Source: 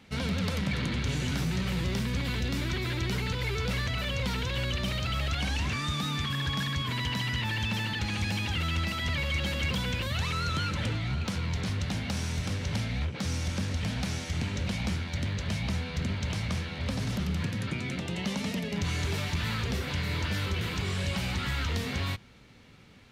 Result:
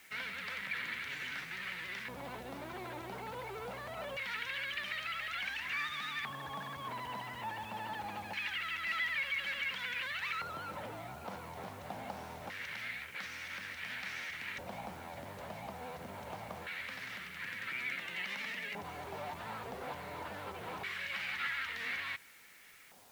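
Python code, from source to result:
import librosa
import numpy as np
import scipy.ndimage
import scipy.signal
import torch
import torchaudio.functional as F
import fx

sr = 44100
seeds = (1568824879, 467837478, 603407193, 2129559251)

p1 = fx.over_compress(x, sr, threshold_db=-33.0, ratio=-1.0)
p2 = x + (p1 * librosa.db_to_amplitude(-1.0))
p3 = fx.filter_lfo_bandpass(p2, sr, shape='square', hz=0.24, low_hz=770.0, high_hz=1900.0, q=2.5)
p4 = fx.quant_dither(p3, sr, seeds[0], bits=10, dither='triangular')
p5 = fx.vibrato(p4, sr, rate_hz=13.0, depth_cents=48.0)
y = p5 * librosa.db_to_amplitude(-2.0)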